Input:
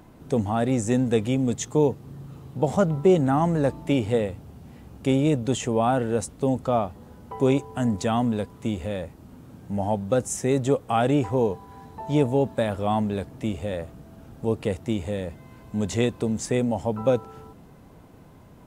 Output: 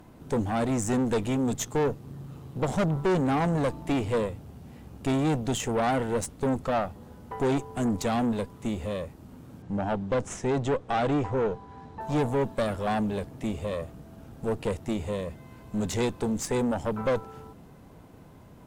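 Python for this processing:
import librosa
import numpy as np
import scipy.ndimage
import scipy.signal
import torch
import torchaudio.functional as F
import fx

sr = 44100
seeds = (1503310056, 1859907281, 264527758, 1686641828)

y = fx.tube_stage(x, sr, drive_db=24.0, bias=0.7)
y = fx.air_absorb(y, sr, metres=93.0, at=(9.62, 12.01))
y = F.gain(torch.from_numpy(y), 3.0).numpy()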